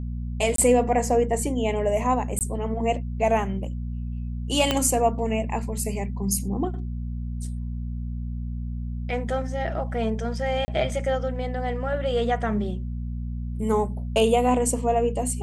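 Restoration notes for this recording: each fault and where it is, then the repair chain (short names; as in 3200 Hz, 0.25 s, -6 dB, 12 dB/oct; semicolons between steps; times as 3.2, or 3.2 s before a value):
hum 60 Hz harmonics 4 -30 dBFS
0.56–0.58 gap 23 ms
2.39–2.41 gap 18 ms
4.71 pop -7 dBFS
10.65–10.68 gap 30 ms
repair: de-click; de-hum 60 Hz, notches 4; interpolate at 0.56, 23 ms; interpolate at 2.39, 18 ms; interpolate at 10.65, 30 ms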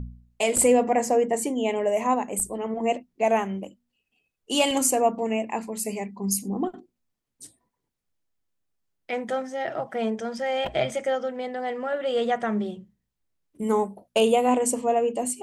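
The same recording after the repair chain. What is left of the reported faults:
4.71 pop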